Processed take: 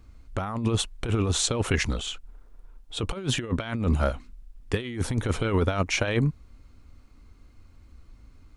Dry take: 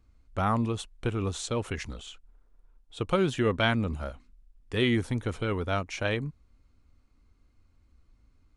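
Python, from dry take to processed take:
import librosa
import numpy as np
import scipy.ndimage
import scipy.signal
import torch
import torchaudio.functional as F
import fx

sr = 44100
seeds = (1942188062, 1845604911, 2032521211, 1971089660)

y = fx.over_compress(x, sr, threshold_db=-31.0, ratio=-0.5)
y = y * 10.0 ** (7.0 / 20.0)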